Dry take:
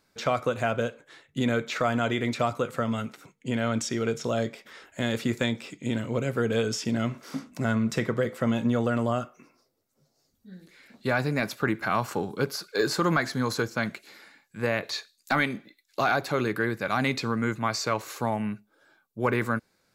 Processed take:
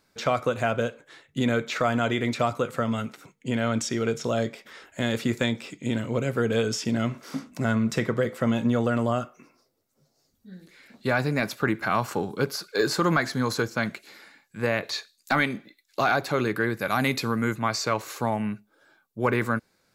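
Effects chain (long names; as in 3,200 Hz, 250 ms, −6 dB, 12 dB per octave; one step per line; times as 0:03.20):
0:16.79–0:17.56: parametric band 12,000 Hz +14 dB 0.52 octaves
level +1.5 dB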